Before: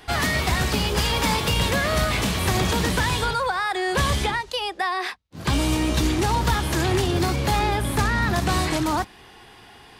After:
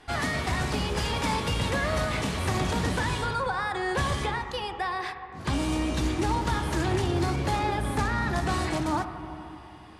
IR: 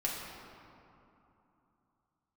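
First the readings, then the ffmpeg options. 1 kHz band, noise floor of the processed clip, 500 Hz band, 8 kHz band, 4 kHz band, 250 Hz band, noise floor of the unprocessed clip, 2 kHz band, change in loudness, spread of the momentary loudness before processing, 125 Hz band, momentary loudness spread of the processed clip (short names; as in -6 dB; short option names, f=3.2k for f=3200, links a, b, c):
-4.5 dB, -45 dBFS, -4.5 dB, -8.5 dB, -8.5 dB, -4.5 dB, -48 dBFS, -6.0 dB, -5.5 dB, 4 LU, -5.0 dB, 6 LU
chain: -filter_complex "[0:a]lowpass=f=11k:w=0.5412,lowpass=f=11k:w=1.3066,asplit=2[a][b];[1:a]atrim=start_sample=2205,lowpass=2.5k[c];[b][c]afir=irnorm=-1:irlink=0,volume=-7.5dB[d];[a][d]amix=inputs=2:normalize=0,volume=-8dB"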